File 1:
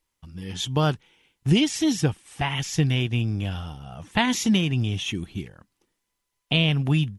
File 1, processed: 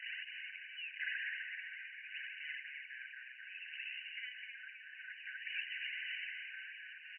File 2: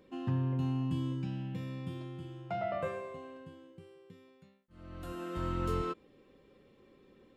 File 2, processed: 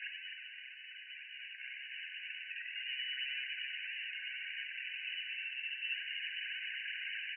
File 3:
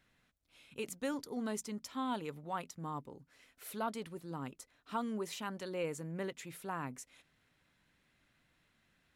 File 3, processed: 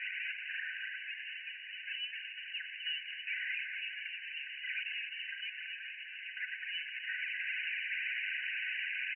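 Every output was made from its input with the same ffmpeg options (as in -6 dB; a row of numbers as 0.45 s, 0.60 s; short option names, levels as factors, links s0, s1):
-filter_complex "[0:a]aeval=exprs='val(0)+0.5*0.0473*sgn(val(0))':c=same,areverse,acompressor=threshold=0.0282:ratio=5,areverse,alimiter=level_in=1.78:limit=0.0631:level=0:latency=1:release=37,volume=0.562,flanger=delay=0.2:depth=2.7:regen=27:speed=1.9:shape=triangular,asplit=2[s0][s1];[s1]asplit=8[s2][s3][s4][s5][s6][s7][s8][s9];[s2]adelay=258,afreqshift=-140,volume=0.562[s10];[s3]adelay=516,afreqshift=-280,volume=0.331[s11];[s4]adelay=774,afreqshift=-420,volume=0.195[s12];[s5]adelay=1032,afreqshift=-560,volume=0.116[s13];[s6]adelay=1290,afreqshift=-700,volume=0.0684[s14];[s7]adelay=1548,afreqshift=-840,volume=0.0403[s15];[s8]adelay=1806,afreqshift=-980,volume=0.0237[s16];[s9]adelay=2064,afreqshift=-1120,volume=0.014[s17];[s10][s11][s12][s13][s14][s15][s16][s17]amix=inputs=8:normalize=0[s18];[s0][s18]amix=inputs=2:normalize=0,lowpass=f=3400:t=q:w=0.5098,lowpass=f=3400:t=q:w=0.6013,lowpass=f=3400:t=q:w=0.9,lowpass=f=3400:t=q:w=2.563,afreqshift=-4000,afftfilt=real='re*eq(mod(floor(b*sr/1024/1500),2),1)':imag='im*eq(mod(floor(b*sr/1024/1500),2),1)':win_size=1024:overlap=0.75,volume=1.33"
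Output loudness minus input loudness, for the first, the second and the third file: -19.5 LU, -3.5 LU, +3.5 LU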